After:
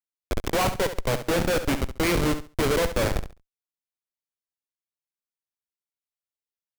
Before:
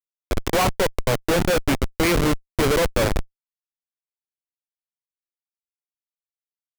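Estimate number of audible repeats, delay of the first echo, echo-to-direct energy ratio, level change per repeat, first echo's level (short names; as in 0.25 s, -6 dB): 2, 69 ms, -10.5 dB, -13.5 dB, -10.5 dB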